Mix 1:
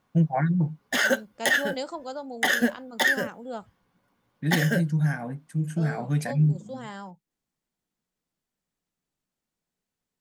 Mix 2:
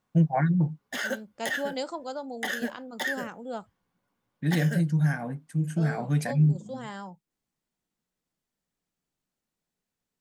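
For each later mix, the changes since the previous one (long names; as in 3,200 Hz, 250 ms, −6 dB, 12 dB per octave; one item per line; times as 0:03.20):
background −8.5 dB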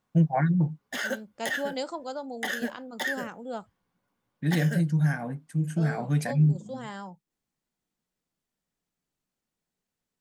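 nothing changed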